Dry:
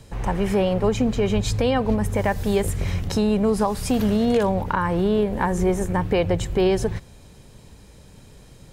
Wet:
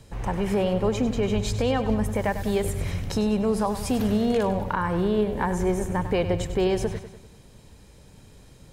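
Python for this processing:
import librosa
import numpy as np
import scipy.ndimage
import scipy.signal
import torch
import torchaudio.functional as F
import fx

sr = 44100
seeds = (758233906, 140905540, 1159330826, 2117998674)

y = fx.echo_feedback(x, sr, ms=98, feedback_pct=51, wet_db=-11.5)
y = F.gain(torch.from_numpy(y), -3.5).numpy()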